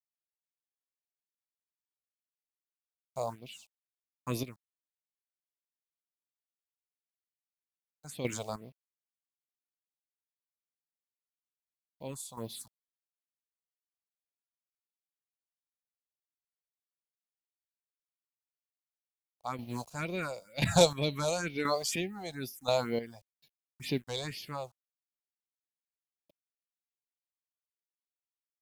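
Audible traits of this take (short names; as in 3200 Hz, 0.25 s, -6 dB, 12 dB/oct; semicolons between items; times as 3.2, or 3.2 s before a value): a quantiser's noise floor 10-bit, dither none; chopped level 0.97 Hz, depth 65%, duty 30%; phasing stages 4, 2.1 Hz, lowest notch 260–1400 Hz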